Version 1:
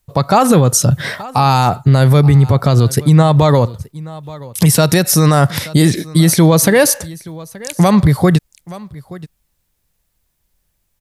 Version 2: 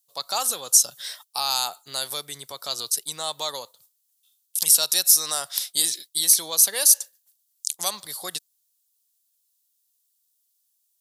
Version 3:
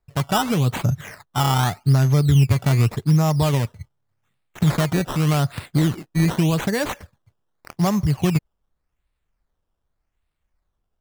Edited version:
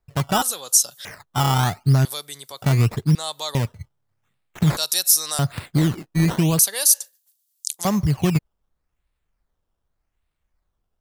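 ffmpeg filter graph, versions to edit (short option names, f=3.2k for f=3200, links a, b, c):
-filter_complex "[1:a]asplit=5[a][b][c][d][e];[2:a]asplit=6[f][g][h][i][j][k];[f]atrim=end=0.422[l];[a]atrim=start=0.418:end=1.052[m];[g]atrim=start=1.048:end=2.052[n];[b]atrim=start=2.048:end=2.622[o];[h]atrim=start=2.618:end=3.152[p];[c]atrim=start=3.148:end=3.552[q];[i]atrim=start=3.548:end=4.772[r];[d]atrim=start=4.768:end=5.392[s];[j]atrim=start=5.388:end=6.592[t];[e]atrim=start=6.588:end=7.852[u];[k]atrim=start=7.848[v];[l][m]acrossfade=d=0.004:c1=hsin:c2=hsin[w];[w][n]acrossfade=d=0.004:c1=hsin:c2=hsin[x];[x][o]acrossfade=d=0.004:c1=hsin:c2=hsin[y];[y][p]acrossfade=d=0.004:c1=hsin:c2=hsin[z];[z][q]acrossfade=d=0.004:c1=hsin:c2=hsin[aa];[aa][r]acrossfade=d=0.004:c1=hsin:c2=hsin[ab];[ab][s]acrossfade=d=0.004:c1=hsin:c2=hsin[ac];[ac][t]acrossfade=d=0.004:c1=hsin:c2=hsin[ad];[ad][u]acrossfade=d=0.004:c1=hsin:c2=hsin[ae];[ae][v]acrossfade=d=0.004:c1=hsin:c2=hsin"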